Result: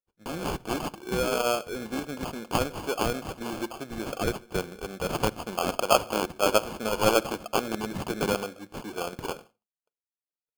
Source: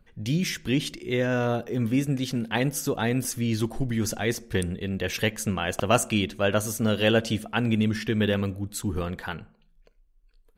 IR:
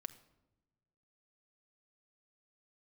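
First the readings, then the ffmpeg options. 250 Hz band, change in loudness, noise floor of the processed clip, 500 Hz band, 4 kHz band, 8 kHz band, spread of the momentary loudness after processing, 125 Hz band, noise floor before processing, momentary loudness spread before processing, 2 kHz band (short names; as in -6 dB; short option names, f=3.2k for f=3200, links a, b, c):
-7.0 dB, -2.5 dB, under -85 dBFS, 0.0 dB, -2.0 dB, -3.0 dB, 12 LU, -10.5 dB, -61 dBFS, 7 LU, -4.0 dB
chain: -filter_complex "[0:a]acrossover=split=6200[a][b];[b]acompressor=threshold=-50dB:ratio=4:attack=1:release=60[c];[a][c]amix=inputs=2:normalize=0,highpass=500,agate=range=-33dB:threshold=-48dB:ratio=3:detection=peak,acrusher=samples=23:mix=1:aa=0.000001,asplit=2[d][e];[1:a]atrim=start_sample=2205,atrim=end_sample=6174[f];[e][f]afir=irnorm=-1:irlink=0,volume=-5dB[g];[d][g]amix=inputs=2:normalize=0"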